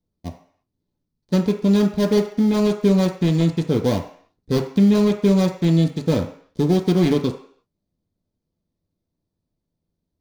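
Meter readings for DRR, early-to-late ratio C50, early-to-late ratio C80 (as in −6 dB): 1.5 dB, 9.5 dB, 12.5 dB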